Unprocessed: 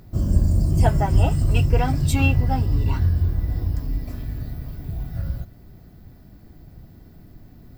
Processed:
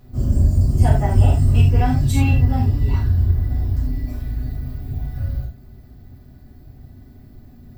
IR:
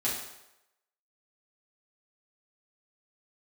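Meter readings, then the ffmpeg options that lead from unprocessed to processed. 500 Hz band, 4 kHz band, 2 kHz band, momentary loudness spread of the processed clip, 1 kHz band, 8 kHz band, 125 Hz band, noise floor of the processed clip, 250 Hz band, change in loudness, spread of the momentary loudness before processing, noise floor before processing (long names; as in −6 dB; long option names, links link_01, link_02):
−1.0 dB, −1.0 dB, −2.5 dB, 13 LU, 0.0 dB, can't be measured, +4.0 dB, −45 dBFS, +2.5 dB, +3.0 dB, 13 LU, −47 dBFS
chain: -filter_complex "[0:a]lowshelf=frequency=110:gain=7.5[link_01];[1:a]atrim=start_sample=2205,atrim=end_sample=4410[link_02];[link_01][link_02]afir=irnorm=-1:irlink=0,volume=-7dB"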